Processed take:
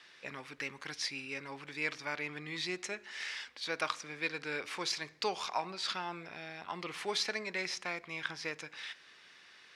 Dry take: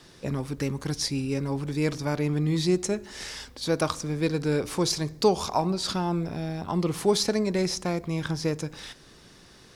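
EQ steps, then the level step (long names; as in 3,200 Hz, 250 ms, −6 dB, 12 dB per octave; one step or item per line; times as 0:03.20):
resonant band-pass 2,200 Hz, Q 1.7
+3.0 dB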